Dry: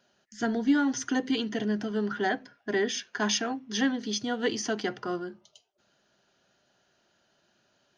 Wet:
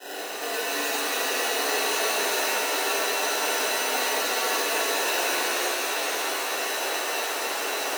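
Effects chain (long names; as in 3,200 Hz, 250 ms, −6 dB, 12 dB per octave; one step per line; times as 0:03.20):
compressor on every frequency bin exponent 0.2
downward expander −20 dBFS
reversed playback
downward compressor 6 to 1, threshold −27 dBFS, peak gain reduction 12 dB
reversed playback
tilt shelving filter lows +4.5 dB
decimation without filtering 20×
high-pass filter 490 Hz 24 dB per octave
parametric band 700 Hz −6 dB 2.5 octaves
notch comb filter 1,200 Hz
reverb with rising layers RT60 3.5 s, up +7 semitones, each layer −2 dB, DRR −9 dB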